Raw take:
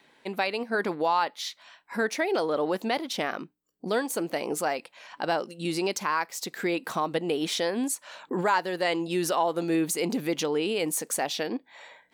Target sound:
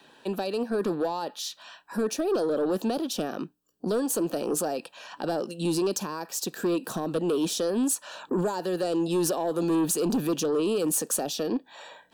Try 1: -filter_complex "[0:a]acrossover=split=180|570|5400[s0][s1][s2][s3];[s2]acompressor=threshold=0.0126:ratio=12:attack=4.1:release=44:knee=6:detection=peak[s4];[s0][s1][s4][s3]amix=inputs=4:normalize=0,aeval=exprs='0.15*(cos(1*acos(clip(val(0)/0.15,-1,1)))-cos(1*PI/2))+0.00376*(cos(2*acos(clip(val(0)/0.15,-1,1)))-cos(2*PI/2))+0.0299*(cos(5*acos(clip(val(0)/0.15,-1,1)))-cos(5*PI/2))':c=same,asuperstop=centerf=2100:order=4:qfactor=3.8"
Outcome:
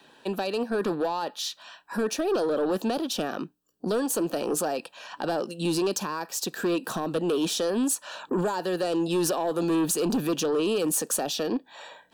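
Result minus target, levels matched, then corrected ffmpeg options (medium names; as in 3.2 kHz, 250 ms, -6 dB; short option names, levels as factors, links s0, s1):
compression: peak gain reduction -6.5 dB
-filter_complex "[0:a]acrossover=split=180|570|5400[s0][s1][s2][s3];[s2]acompressor=threshold=0.00562:ratio=12:attack=4.1:release=44:knee=6:detection=peak[s4];[s0][s1][s4][s3]amix=inputs=4:normalize=0,aeval=exprs='0.15*(cos(1*acos(clip(val(0)/0.15,-1,1)))-cos(1*PI/2))+0.00376*(cos(2*acos(clip(val(0)/0.15,-1,1)))-cos(2*PI/2))+0.0299*(cos(5*acos(clip(val(0)/0.15,-1,1)))-cos(5*PI/2))':c=same,asuperstop=centerf=2100:order=4:qfactor=3.8"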